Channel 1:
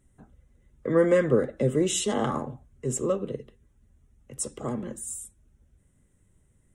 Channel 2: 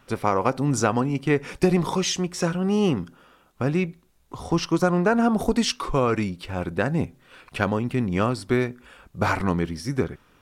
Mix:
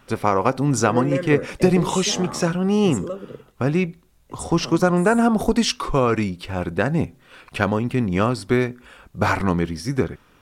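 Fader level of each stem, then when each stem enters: -4.0, +3.0 dB; 0.00, 0.00 s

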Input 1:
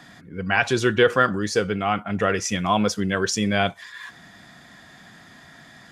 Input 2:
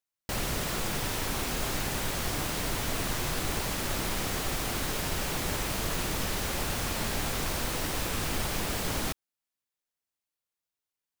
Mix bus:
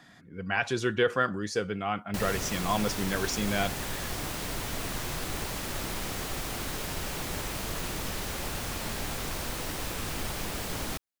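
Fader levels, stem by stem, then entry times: -8.0, -3.0 dB; 0.00, 1.85 s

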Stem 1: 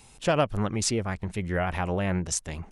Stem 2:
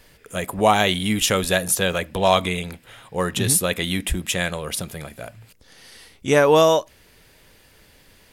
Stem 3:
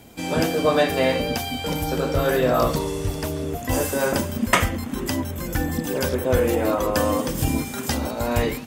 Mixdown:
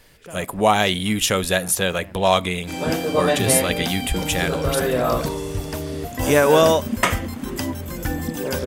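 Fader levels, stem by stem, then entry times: -16.5, 0.0, -1.0 dB; 0.00, 0.00, 2.50 s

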